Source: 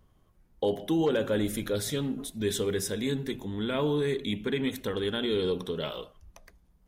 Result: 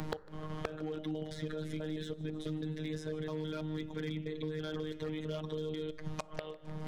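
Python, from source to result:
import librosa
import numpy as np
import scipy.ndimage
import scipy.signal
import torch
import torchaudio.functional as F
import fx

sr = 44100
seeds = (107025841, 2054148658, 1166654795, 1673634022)

p1 = fx.block_reorder(x, sr, ms=164.0, group=4)
p2 = scipy.signal.sosfilt(scipy.signal.bessel(2, 3100.0, 'lowpass', norm='mag', fs=sr, output='sos'), p1)
p3 = fx.over_compress(p2, sr, threshold_db=-31.0, ratio=-0.5)
p4 = p2 + F.gain(torch.from_numpy(p3), 1.5).numpy()
p5 = fx.robotise(p4, sr, hz=155.0)
p6 = np.clip(p5, -10.0 ** (-17.0 / 20.0), 10.0 ** (-17.0 / 20.0))
p7 = fx.gate_flip(p6, sr, shuts_db=-27.0, range_db=-27)
p8 = 10.0 ** (-33.5 / 20.0) * (np.abs((p7 / 10.0 ** (-33.5 / 20.0) + 3.0) % 4.0 - 2.0) - 1.0)
p9 = fx.echo_feedback(p8, sr, ms=152, feedback_pct=52, wet_db=-22.5)
p10 = fx.rev_fdn(p9, sr, rt60_s=0.95, lf_ratio=1.0, hf_ratio=0.35, size_ms=32.0, drr_db=16.0)
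p11 = fx.band_squash(p10, sr, depth_pct=100)
y = F.gain(torch.from_numpy(p11), 13.5).numpy()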